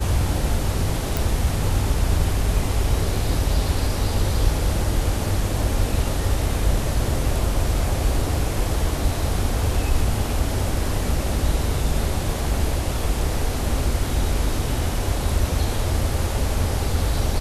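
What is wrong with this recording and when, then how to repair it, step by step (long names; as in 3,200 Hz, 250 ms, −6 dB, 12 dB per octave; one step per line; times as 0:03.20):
0:01.17: click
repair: click removal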